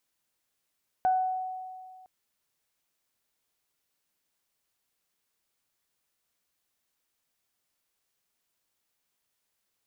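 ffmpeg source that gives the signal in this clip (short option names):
-f lavfi -i "aevalsrc='0.1*pow(10,-3*t/2.02)*sin(2*PI*746*t)+0.0106*pow(10,-3*t/0.57)*sin(2*PI*1492*t)':d=1.01:s=44100"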